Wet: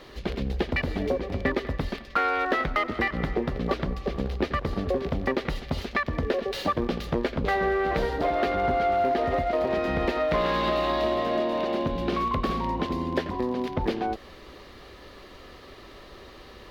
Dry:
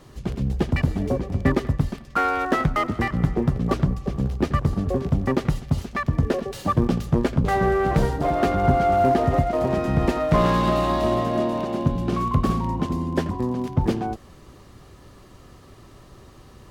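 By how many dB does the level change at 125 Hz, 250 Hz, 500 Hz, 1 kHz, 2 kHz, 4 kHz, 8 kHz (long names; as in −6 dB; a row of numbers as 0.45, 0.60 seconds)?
−10.5 dB, −6.0 dB, −2.0 dB, −3.0 dB, +1.0 dB, +1.5 dB, can't be measured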